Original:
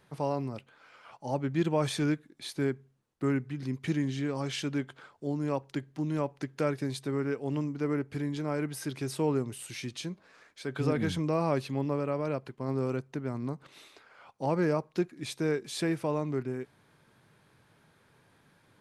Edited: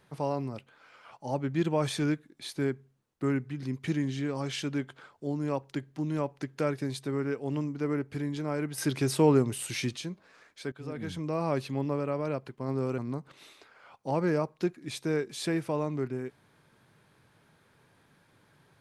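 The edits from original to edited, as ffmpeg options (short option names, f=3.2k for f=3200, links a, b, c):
-filter_complex "[0:a]asplit=5[a][b][c][d][e];[a]atrim=end=8.782[f];[b]atrim=start=8.778:end=9.962,asetpts=PTS-STARTPTS,volume=6.5dB[g];[c]atrim=start=9.958:end=10.72,asetpts=PTS-STARTPTS,afade=t=out:st=0.758:d=0.004:c=hsin:silence=0.141254[h];[d]atrim=start=10.72:end=12.982,asetpts=PTS-STARTPTS,afade=t=in:d=0.9:silence=0.141254[i];[e]atrim=start=13.328[j];[f][g]acrossfade=d=0.004:c1=hsin:c2=hsin[k];[h][i]concat=n=2:v=0:a=1[l];[k][l]acrossfade=d=0.004:c1=hsin:c2=hsin[m];[m][j]acrossfade=d=0.004:c1=hsin:c2=hsin"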